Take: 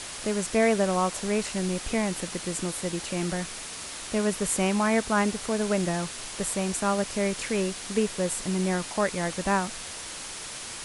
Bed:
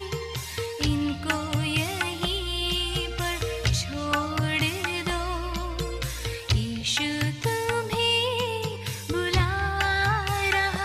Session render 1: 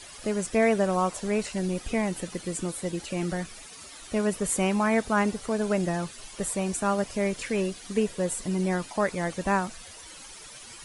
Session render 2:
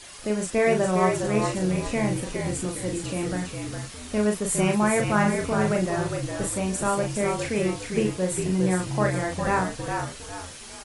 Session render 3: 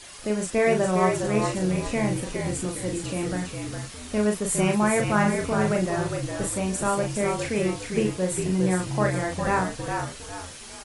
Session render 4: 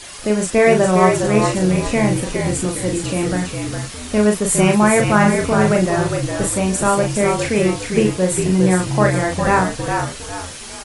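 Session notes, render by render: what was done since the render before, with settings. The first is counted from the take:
denoiser 12 dB, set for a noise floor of -38 dBFS
doubler 38 ms -4 dB; frequency-shifting echo 0.408 s, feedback 35%, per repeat -50 Hz, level -5 dB
nothing audible
gain +8.5 dB; limiter -1 dBFS, peak gain reduction 1.5 dB

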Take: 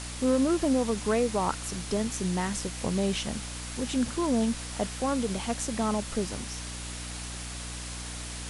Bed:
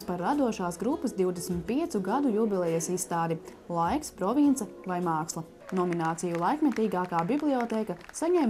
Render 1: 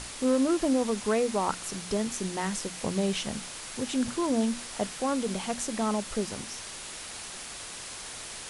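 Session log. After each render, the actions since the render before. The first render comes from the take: notches 60/120/180/240/300 Hz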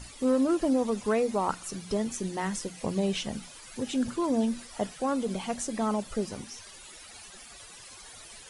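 denoiser 14 dB, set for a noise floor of -41 dBFS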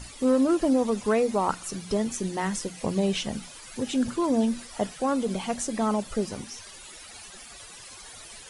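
gain +3 dB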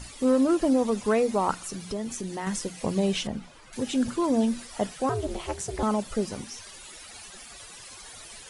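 1.55–2.47 compressor 2:1, threshold -32 dBFS; 3.27–3.73 LPF 1400 Hz 6 dB/oct; 5.09–5.83 ring modulator 160 Hz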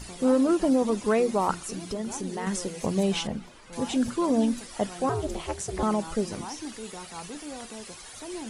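add bed -13 dB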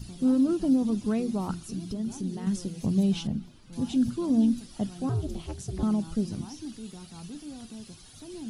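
ten-band EQ 125 Hz +7 dB, 250 Hz +3 dB, 500 Hz -11 dB, 1000 Hz -9 dB, 2000 Hz -12 dB, 8000 Hz -10 dB

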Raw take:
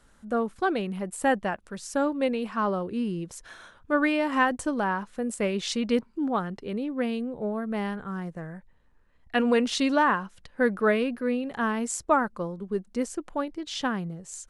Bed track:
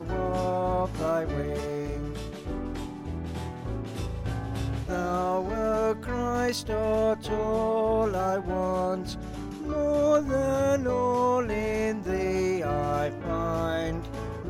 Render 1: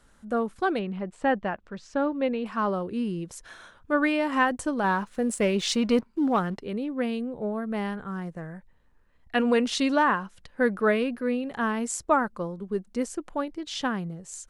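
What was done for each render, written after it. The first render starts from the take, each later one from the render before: 0.79–2.46 air absorption 170 m; 4.84–6.59 sample leveller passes 1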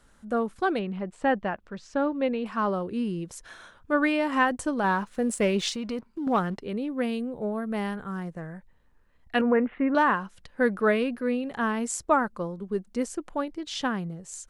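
5.69–6.27 compressor 2.5:1, threshold -33 dBFS; 6.84–8.23 high shelf 9400 Hz +9 dB; 9.41–9.95 steep low-pass 2100 Hz 48 dB/oct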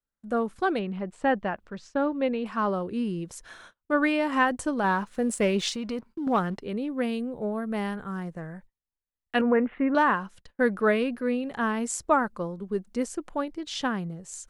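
gate -48 dBFS, range -33 dB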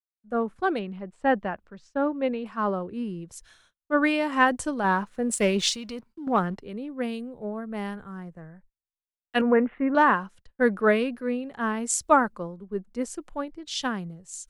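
three-band expander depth 70%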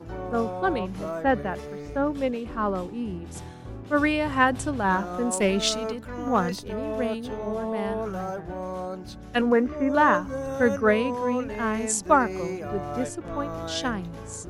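add bed track -5.5 dB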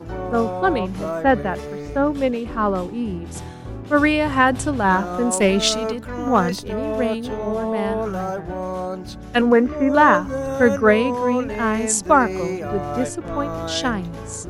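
gain +6 dB; limiter -2 dBFS, peak gain reduction 3 dB

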